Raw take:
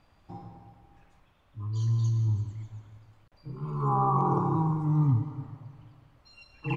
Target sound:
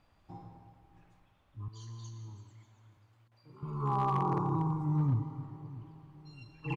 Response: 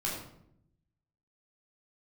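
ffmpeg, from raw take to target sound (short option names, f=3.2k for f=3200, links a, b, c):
-filter_complex "[0:a]asettb=1/sr,asplit=3[a][b][c];[a]atrim=end=1.684[d];[b]atrim=start=1.68:end=3.63,asetpts=PTS-STARTPTS,afade=t=in:d=0.004:c=qsin,afade=t=out:st=1.946:d=0.004:c=qsin,highpass=f=610:p=1[e];[c]atrim=start=3.626[f];[d][e]acrossfade=d=0.004:c1=hsin:c2=qsin[g];[g][f]acrossfade=d=0.004:c1=qsin:c2=hsin,asplit=2[h][i];[i]adelay=644,lowpass=f=910:p=1,volume=-17dB,asplit=2[j][k];[k]adelay=644,lowpass=f=910:p=1,volume=0.51,asplit=2[l][m];[m]adelay=644,lowpass=f=910:p=1,volume=0.51,asplit=2[n][o];[o]adelay=644,lowpass=f=910:p=1,volume=0.51[p];[h][j][l][n][p]amix=inputs=5:normalize=0,volume=18dB,asoftclip=hard,volume=-18dB,volume=-5dB"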